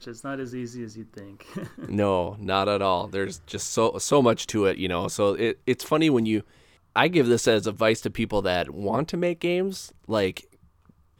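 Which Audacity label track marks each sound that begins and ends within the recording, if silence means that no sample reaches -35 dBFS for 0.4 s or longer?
6.960000	10.400000	sound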